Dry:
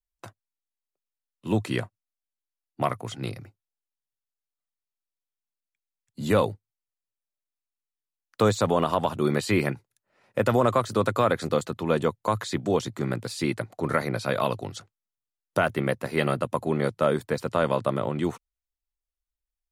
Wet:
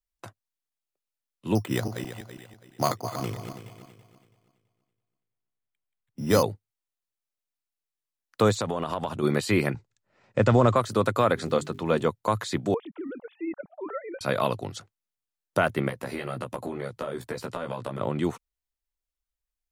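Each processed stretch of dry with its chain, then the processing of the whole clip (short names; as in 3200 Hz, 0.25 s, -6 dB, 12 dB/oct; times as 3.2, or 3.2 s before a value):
1.55–6.43 regenerating reverse delay 0.165 s, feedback 56%, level -7 dB + delay with a stepping band-pass 0.212 s, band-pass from 830 Hz, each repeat 1.4 oct, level -9.5 dB + careless resampling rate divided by 8×, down filtered, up hold
8.55–9.23 LPF 11000 Hz + compressor 5:1, threshold -24 dBFS
9.74–10.76 block floating point 7-bit + steep low-pass 8200 Hz 72 dB/oct + low shelf 160 Hz +10 dB
11.36–12.05 LPF 10000 Hz + notches 50/100/150/200/250/300/350/400 Hz + crackle 420/s -51 dBFS
12.74–14.21 sine-wave speech + compressor 1.5:1, threshold -41 dBFS + high shelf 2200 Hz -11 dB
15.88–18.01 compressor 10:1, threshold -29 dBFS + doubler 16 ms -3 dB
whole clip: dry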